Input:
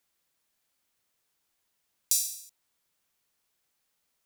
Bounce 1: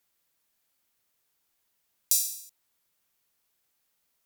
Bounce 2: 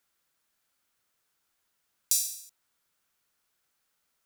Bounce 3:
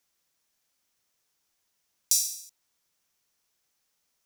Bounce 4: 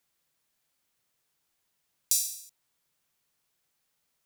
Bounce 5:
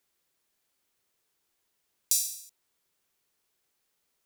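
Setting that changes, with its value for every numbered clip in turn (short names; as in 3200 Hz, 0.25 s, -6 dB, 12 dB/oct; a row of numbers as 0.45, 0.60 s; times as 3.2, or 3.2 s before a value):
bell, frequency: 15000, 1400, 5800, 140, 390 Hz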